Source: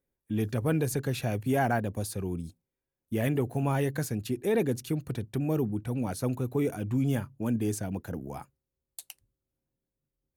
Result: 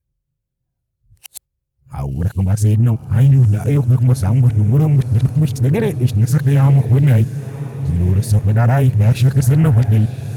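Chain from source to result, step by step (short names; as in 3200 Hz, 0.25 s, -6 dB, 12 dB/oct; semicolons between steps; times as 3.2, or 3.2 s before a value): whole clip reversed; resonant low shelf 180 Hz +12 dB, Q 1.5; in parallel at +0.5 dB: limiter -18 dBFS, peak gain reduction 8 dB; on the sum: spectral noise reduction 9 dB; on a send: diffused feedback echo 1.027 s, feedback 59%, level -13 dB; on the sum: Doppler distortion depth 0.31 ms; gain +3 dB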